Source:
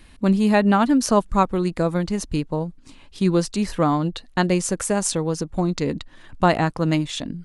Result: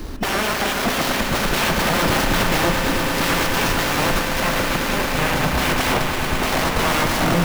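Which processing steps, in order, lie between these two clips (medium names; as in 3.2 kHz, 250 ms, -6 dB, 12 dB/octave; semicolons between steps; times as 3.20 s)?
bit-reversed sample order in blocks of 16 samples; peaking EQ 390 Hz +8.5 dB 0.55 oct; level rider gain up to 4.5 dB; sine folder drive 16 dB, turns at -14.5 dBFS; 4.40–5.44 s: distance through air 180 m; echo with a slow build-up 109 ms, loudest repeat 8, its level -12 dB; reverberation RT60 2.3 s, pre-delay 35 ms, DRR 4 dB; sliding maximum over 5 samples; trim -1.5 dB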